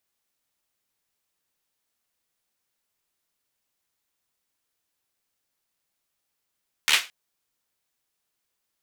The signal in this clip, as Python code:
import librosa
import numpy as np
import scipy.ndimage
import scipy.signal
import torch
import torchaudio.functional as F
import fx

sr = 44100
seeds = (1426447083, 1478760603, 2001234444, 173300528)

y = fx.drum_clap(sr, seeds[0], length_s=0.22, bursts=5, spacing_ms=13, hz=2500.0, decay_s=0.26)